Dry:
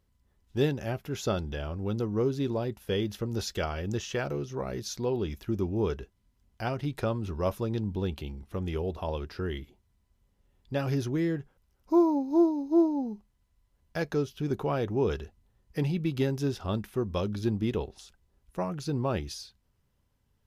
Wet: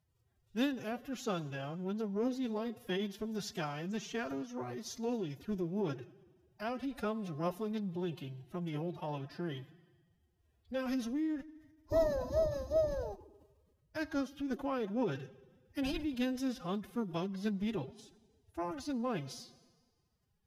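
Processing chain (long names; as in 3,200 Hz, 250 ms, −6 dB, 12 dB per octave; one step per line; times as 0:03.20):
four-comb reverb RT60 1.5 s, combs from 33 ms, DRR 16.5 dB
phase-vocoder pitch shift with formants kept +11 semitones
level −6.5 dB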